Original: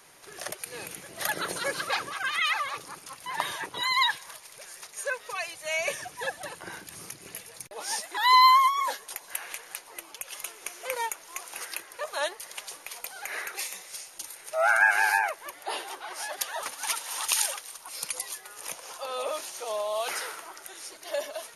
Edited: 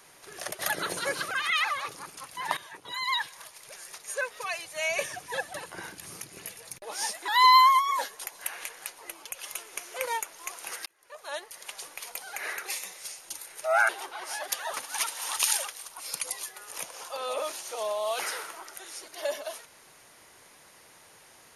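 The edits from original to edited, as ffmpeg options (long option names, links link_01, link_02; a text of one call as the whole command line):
ffmpeg -i in.wav -filter_complex "[0:a]asplit=6[link_01][link_02][link_03][link_04][link_05][link_06];[link_01]atrim=end=0.592[link_07];[link_02]atrim=start=1.178:end=1.902[link_08];[link_03]atrim=start=2.198:end=3.46,asetpts=PTS-STARTPTS,afade=type=out:start_time=1.258:duration=0.004:curve=hsin:silence=0.199526[link_09];[link_04]atrim=start=3.46:end=11.75,asetpts=PTS-STARTPTS,afade=type=in:duration=1.17:silence=0.199526,afade=type=out:start_time=8.286:duration=0.004:curve=hsin[link_10];[link_05]atrim=start=11.75:end=14.782,asetpts=PTS-STARTPTS,afade=type=in:duration=1.03[link_11];[link_06]atrim=start=15.778[link_12];[link_07][link_08]acrossfade=duration=0.004:curve1=hsin:curve2=hsin[link_13];[link_09][link_10][link_11]concat=n=3:v=0:a=1[link_14];[link_13][link_14]acrossfade=duration=0.004:curve1=hsin:curve2=hsin[link_15];[link_15][link_12]acrossfade=duration=0.004:curve1=hsin:curve2=hsin" out.wav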